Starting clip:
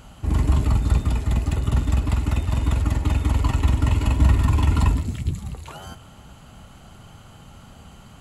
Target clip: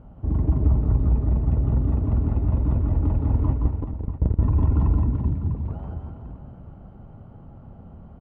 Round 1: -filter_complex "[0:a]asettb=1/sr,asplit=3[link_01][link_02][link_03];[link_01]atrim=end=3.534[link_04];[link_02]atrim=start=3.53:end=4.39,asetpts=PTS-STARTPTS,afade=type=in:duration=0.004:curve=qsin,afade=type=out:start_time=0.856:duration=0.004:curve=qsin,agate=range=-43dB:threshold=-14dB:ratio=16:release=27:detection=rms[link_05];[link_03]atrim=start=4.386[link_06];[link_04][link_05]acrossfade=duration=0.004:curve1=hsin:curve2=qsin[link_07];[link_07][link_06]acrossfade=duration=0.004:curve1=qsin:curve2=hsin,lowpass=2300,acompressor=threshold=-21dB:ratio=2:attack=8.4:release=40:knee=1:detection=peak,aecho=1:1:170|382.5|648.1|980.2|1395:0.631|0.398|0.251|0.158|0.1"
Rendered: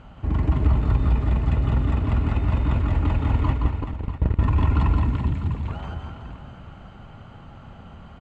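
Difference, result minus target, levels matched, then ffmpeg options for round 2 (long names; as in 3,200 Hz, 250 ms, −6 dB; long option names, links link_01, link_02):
2,000 Hz band +17.0 dB
-filter_complex "[0:a]asettb=1/sr,asplit=3[link_01][link_02][link_03];[link_01]atrim=end=3.534[link_04];[link_02]atrim=start=3.53:end=4.39,asetpts=PTS-STARTPTS,afade=type=in:duration=0.004:curve=qsin,afade=type=out:start_time=0.856:duration=0.004:curve=qsin,agate=range=-43dB:threshold=-14dB:ratio=16:release=27:detection=rms[link_05];[link_03]atrim=start=4.386[link_06];[link_04][link_05]acrossfade=duration=0.004:curve1=hsin:curve2=qsin[link_07];[link_07][link_06]acrossfade=duration=0.004:curve1=qsin:curve2=hsin,lowpass=620,acompressor=threshold=-21dB:ratio=2:attack=8.4:release=40:knee=1:detection=peak,aecho=1:1:170|382.5|648.1|980.2|1395:0.631|0.398|0.251|0.158|0.1"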